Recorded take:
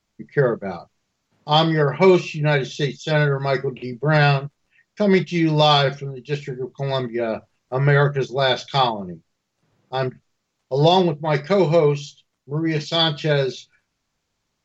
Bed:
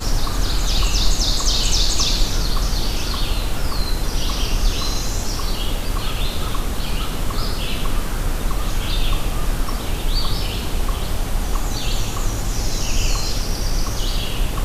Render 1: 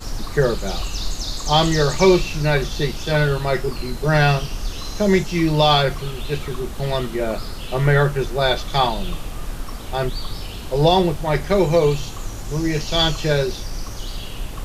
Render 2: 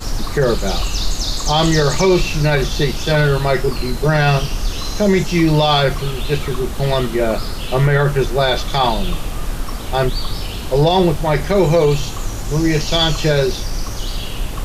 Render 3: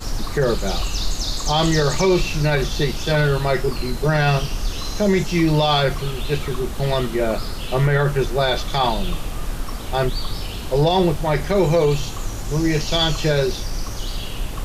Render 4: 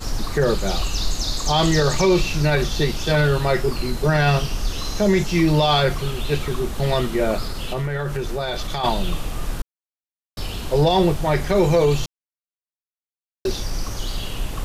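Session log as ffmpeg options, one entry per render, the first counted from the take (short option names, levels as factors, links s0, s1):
-filter_complex "[1:a]volume=0.398[s0];[0:a][s0]amix=inputs=2:normalize=0"
-af "alimiter=limit=0.299:level=0:latency=1:release=42,acontrast=57"
-af "volume=0.668"
-filter_complex "[0:a]asplit=3[s0][s1][s2];[s0]afade=t=out:st=7.44:d=0.02[s3];[s1]acompressor=threshold=0.0891:ratio=6:attack=3.2:release=140:knee=1:detection=peak,afade=t=in:st=7.44:d=0.02,afade=t=out:st=8.83:d=0.02[s4];[s2]afade=t=in:st=8.83:d=0.02[s5];[s3][s4][s5]amix=inputs=3:normalize=0,asplit=5[s6][s7][s8][s9][s10];[s6]atrim=end=9.62,asetpts=PTS-STARTPTS,afade=t=out:st=9.616:d=0.004:c=hsin[s11];[s7]atrim=start=9.62:end=10.37,asetpts=PTS-STARTPTS,volume=0[s12];[s8]atrim=start=10.37:end=12.06,asetpts=PTS-STARTPTS,afade=t=in:d=0.004:c=hsin,afade=t=out:st=1.686:d=0.004:c=hsin[s13];[s9]atrim=start=12.06:end=13.45,asetpts=PTS-STARTPTS,volume=0[s14];[s10]atrim=start=13.45,asetpts=PTS-STARTPTS,afade=t=in:d=0.004:c=hsin[s15];[s11][s12][s13][s14][s15]concat=n=5:v=0:a=1"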